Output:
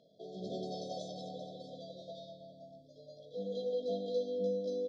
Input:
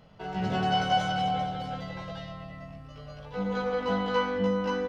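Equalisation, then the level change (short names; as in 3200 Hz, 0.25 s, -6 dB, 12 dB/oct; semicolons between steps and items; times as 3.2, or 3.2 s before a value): BPF 330–5600 Hz; brick-wall FIR band-stop 720–3200 Hz; -4.0 dB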